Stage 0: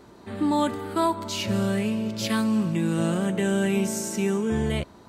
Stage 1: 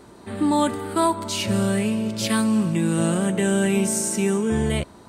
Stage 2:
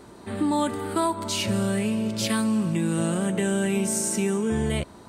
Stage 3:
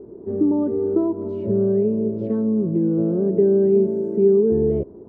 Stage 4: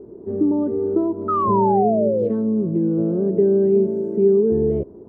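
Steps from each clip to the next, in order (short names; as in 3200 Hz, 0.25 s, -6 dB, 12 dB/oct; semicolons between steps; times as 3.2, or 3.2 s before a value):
bell 8900 Hz +11 dB 0.28 oct; gain +3 dB
compressor 2:1, threshold -23 dBFS, peak gain reduction 4.5 dB
synth low-pass 410 Hz, resonance Q 4.9
painted sound fall, 1.28–2.29, 460–1300 Hz -20 dBFS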